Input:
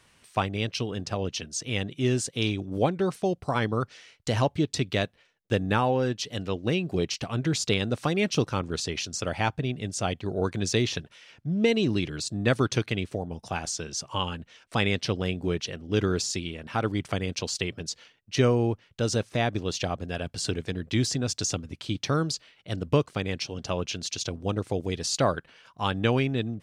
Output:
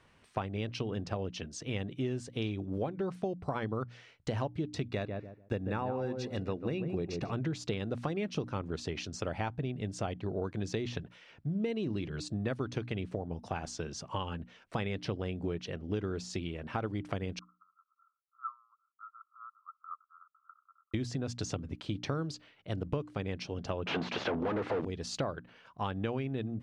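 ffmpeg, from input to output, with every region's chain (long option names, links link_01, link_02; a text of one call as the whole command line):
ffmpeg -i in.wav -filter_complex "[0:a]asettb=1/sr,asplit=3[link_01][link_02][link_03];[link_01]atrim=end=4.894[link_04];[link_02]atrim=start=4.89:end=7.33,asetpts=PTS-STARTPTS,afade=type=in:duration=0.004:curve=qsin,afade=type=out:start_time=2.436:duration=0.004:curve=qsin,asuperstop=centerf=3100:order=8:qfactor=7.6,asplit=2[link_05][link_06];[link_06]adelay=145,lowpass=frequency=1100:poles=1,volume=-7dB,asplit=2[link_07][link_08];[link_08]adelay=145,lowpass=frequency=1100:poles=1,volume=0.23,asplit=2[link_09][link_10];[link_10]adelay=145,lowpass=frequency=1100:poles=1,volume=0.23[link_11];[link_05][link_07][link_09][link_11]amix=inputs=4:normalize=0,atrim=end_sample=107604[link_12];[link_03]atrim=start=7.326[link_13];[link_04][link_12]acrossfade=duration=0.004:curve1=hsin:curve2=qsin[link_14];[link_14][link_13]acrossfade=duration=0.004:curve1=qsin:curve2=hsin,asettb=1/sr,asplit=3[link_15][link_16][link_17];[link_15]atrim=end=17.394[link_18];[link_16]atrim=start=17.39:end=20.94,asetpts=PTS-STARTPTS,afade=type=in:duration=0.004:curve=qsin,afade=type=out:start_time=3.546:duration=0.004:curve=qsin,asuperpass=centerf=1200:order=12:qfactor=3.9,aecho=1:1:1.4:0.75,atrim=end_sample=156555[link_19];[link_17]atrim=start=20.936[link_20];[link_18][link_19]acrossfade=duration=0.004:curve1=hsin:curve2=qsin[link_21];[link_21][link_20]acrossfade=duration=0.004:curve1=qsin:curve2=hsin,asettb=1/sr,asplit=3[link_22][link_23][link_24];[link_22]atrim=end=23.864[link_25];[link_23]atrim=start=23.86:end=24.85,asetpts=PTS-STARTPTS,afade=type=in:duration=0.004:curve=qsin,afade=type=out:start_time=0.986:duration=0.004:curve=qsin,asplit=2[link_26][link_27];[link_27]highpass=frequency=720:poles=1,volume=41dB,asoftclip=type=tanh:threshold=-12.5dB[link_28];[link_26][link_28]amix=inputs=2:normalize=0,lowpass=frequency=1900:poles=1,volume=-6dB,highpass=110,lowpass=4000[link_29];[link_24]atrim=start=24.846[link_30];[link_25][link_29]acrossfade=duration=0.004:curve1=hsin:curve2=qsin[link_31];[link_31][link_30]acrossfade=duration=0.004:curve1=qsin:curve2=hsin,lowpass=frequency=1500:poles=1,bandreject=frequency=60:width_type=h:width=6,bandreject=frequency=120:width_type=h:width=6,bandreject=frequency=180:width_type=h:width=6,bandreject=frequency=240:width_type=h:width=6,bandreject=frequency=300:width_type=h:width=6,acompressor=threshold=-31dB:ratio=6" out.wav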